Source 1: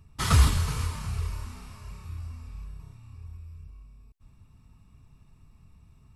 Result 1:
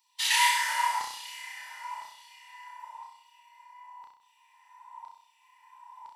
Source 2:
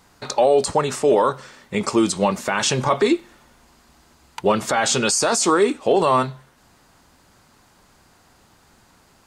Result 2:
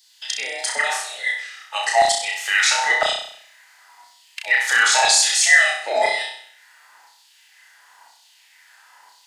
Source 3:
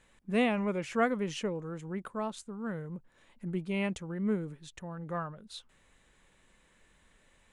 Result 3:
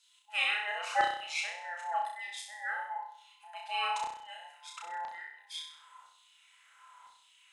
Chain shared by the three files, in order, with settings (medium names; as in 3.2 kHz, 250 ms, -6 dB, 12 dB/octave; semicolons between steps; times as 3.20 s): every band turned upside down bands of 1 kHz; LFO high-pass saw down 0.99 Hz 920–4300 Hz; flutter echo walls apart 5.5 m, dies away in 0.6 s